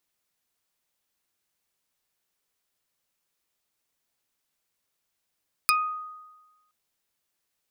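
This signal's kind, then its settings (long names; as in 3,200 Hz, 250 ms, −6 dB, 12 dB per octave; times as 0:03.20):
Karplus-Strong string D#6, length 1.02 s, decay 1.20 s, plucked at 0.34, dark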